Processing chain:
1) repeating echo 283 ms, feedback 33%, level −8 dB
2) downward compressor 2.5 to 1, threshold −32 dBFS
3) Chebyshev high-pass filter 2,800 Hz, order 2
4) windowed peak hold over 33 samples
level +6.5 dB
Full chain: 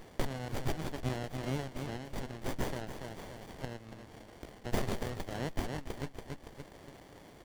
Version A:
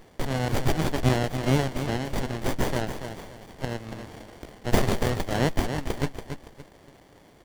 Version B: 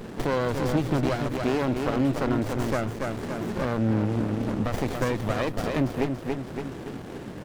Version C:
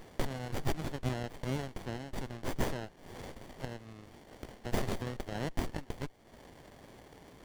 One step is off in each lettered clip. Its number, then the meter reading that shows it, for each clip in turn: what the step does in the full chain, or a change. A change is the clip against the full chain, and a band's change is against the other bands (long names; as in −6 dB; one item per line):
2, average gain reduction 8.5 dB
3, 8 kHz band −6.0 dB
1, change in momentary loudness spread +4 LU